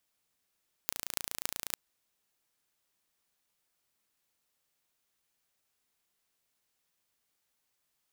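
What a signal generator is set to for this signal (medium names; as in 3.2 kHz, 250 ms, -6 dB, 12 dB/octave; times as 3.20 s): pulse train 28.3 per s, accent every 8, -3 dBFS 0.85 s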